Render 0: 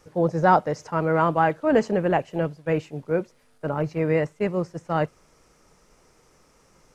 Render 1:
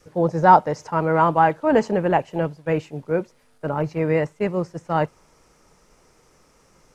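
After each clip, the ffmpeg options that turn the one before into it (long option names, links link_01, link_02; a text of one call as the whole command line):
ffmpeg -i in.wav -af "adynamicequalizer=threshold=0.0141:dfrequency=900:dqfactor=4.7:tfrequency=900:tqfactor=4.7:attack=5:release=100:ratio=0.375:range=3.5:mode=boostabove:tftype=bell,volume=1.5dB" out.wav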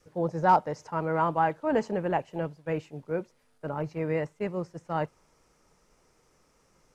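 ffmpeg -i in.wav -af "asoftclip=type=hard:threshold=-3dB,volume=-8.5dB" out.wav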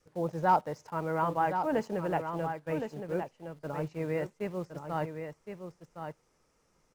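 ffmpeg -i in.wav -filter_complex "[0:a]asplit=2[link_01][link_02];[link_02]acrusher=bits=6:mix=0:aa=0.000001,volume=-9dB[link_03];[link_01][link_03]amix=inputs=2:normalize=0,aecho=1:1:1065:0.422,volume=-6.5dB" out.wav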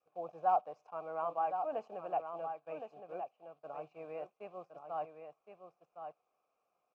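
ffmpeg -i in.wav -filter_complex "[0:a]asplit=3[link_01][link_02][link_03];[link_01]bandpass=frequency=730:width_type=q:width=8,volume=0dB[link_04];[link_02]bandpass=frequency=1090:width_type=q:width=8,volume=-6dB[link_05];[link_03]bandpass=frequency=2440:width_type=q:width=8,volume=-9dB[link_06];[link_04][link_05][link_06]amix=inputs=3:normalize=0,volume=2.5dB" out.wav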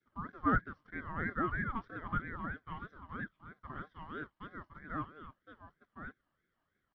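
ffmpeg -i in.wav -af "aresample=11025,aresample=44100,aeval=exprs='val(0)*sin(2*PI*690*n/s+690*0.35/3.1*sin(2*PI*3.1*n/s))':channel_layout=same,volume=3dB" out.wav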